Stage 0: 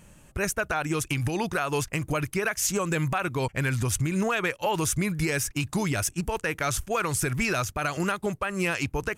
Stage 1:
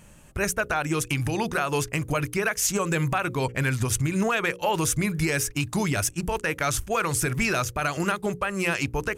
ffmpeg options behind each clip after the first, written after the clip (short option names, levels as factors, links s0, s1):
-af "bandreject=f=60:t=h:w=6,bandreject=f=120:t=h:w=6,bandreject=f=180:t=h:w=6,bandreject=f=240:t=h:w=6,bandreject=f=300:t=h:w=6,bandreject=f=360:t=h:w=6,bandreject=f=420:t=h:w=6,bandreject=f=480:t=h:w=6,bandreject=f=540:t=h:w=6,volume=1.26"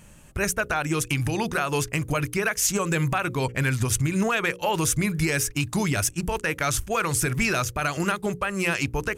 -af "equalizer=f=660:w=0.58:g=-2,volume=1.19"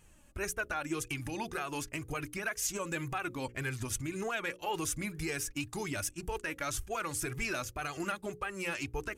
-af "flanger=delay=2.4:depth=1.2:regen=19:speed=1.9:shape=sinusoidal,volume=0.422"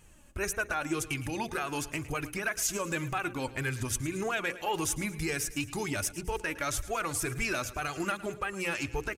-af "aecho=1:1:110|220|330|440|550:0.141|0.0735|0.0382|0.0199|0.0103,volume=1.5"